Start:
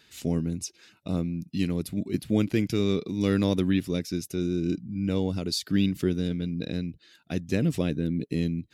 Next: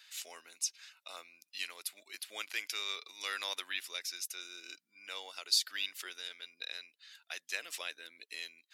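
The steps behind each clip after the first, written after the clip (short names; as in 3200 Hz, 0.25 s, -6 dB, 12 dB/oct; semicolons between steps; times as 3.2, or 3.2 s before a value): Bessel high-pass 1400 Hz, order 4; gain +1.5 dB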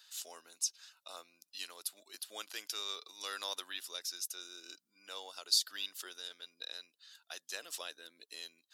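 bell 2200 Hz -15 dB 0.61 oct; gain +1 dB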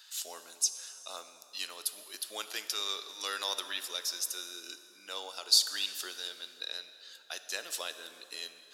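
plate-style reverb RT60 3 s, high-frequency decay 0.7×, DRR 9.5 dB; gain +5.5 dB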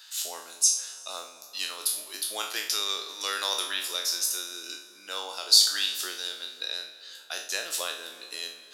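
spectral trails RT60 0.50 s; gain +4 dB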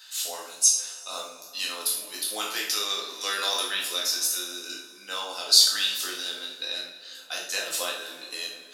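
shoebox room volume 210 m³, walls furnished, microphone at 2 m; gain -1 dB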